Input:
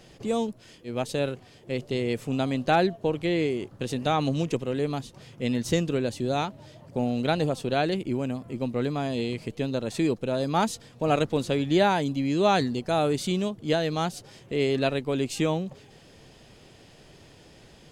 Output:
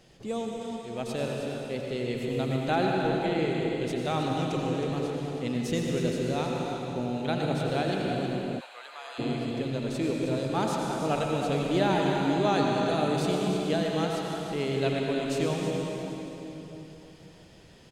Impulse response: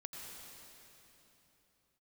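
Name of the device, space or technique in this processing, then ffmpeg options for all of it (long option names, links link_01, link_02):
cave: -filter_complex "[0:a]aecho=1:1:317:0.335[link_01];[1:a]atrim=start_sample=2205[link_02];[link_01][link_02]afir=irnorm=-1:irlink=0,asplit=3[link_03][link_04][link_05];[link_03]afade=type=out:start_time=8.59:duration=0.02[link_06];[link_04]highpass=frequency=870:width=0.5412,highpass=frequency=870:width=1.3066,afade=type=in:start_time=8.59:duration=0.02,afade=type=out:start_time=9.18:duration=0.02[link_07];[link_05]afade=type=in:start_time=9.18:duration=0.02[link_08];[link_06][link_07][link_08]amix=inputs=3:normalize=0"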